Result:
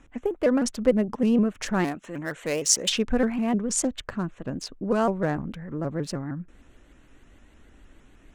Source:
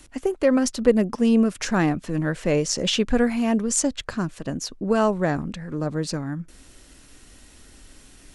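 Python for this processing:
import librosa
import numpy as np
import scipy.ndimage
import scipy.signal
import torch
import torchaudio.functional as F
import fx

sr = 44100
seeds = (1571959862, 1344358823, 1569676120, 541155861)

y = fx.wiener(x, sr, points=9)
y = fx.riaa(y, sr, side='recording', at=(1.84, 2.88), fade=0.02)
y = fx.vibrato_shape(y, sr, shape='saw_up', rate_hz=6.5, depth_cents=160.0)
y = F.gain(torch.from_numpy(y), -3.0).numpy()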